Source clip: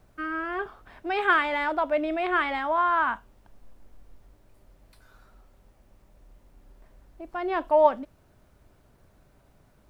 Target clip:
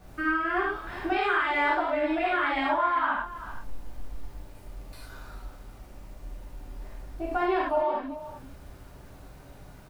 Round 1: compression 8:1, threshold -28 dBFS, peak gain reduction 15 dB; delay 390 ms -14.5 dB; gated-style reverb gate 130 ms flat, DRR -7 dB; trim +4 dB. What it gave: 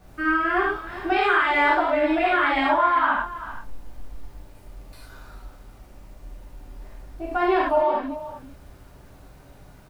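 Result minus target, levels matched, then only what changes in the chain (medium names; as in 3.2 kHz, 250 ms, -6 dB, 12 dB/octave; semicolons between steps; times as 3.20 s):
compression: peak gain reduction -5.5 dB
change: compression 8:1, threshold -34.5 dBFS, peak gain reduction 20.5 dB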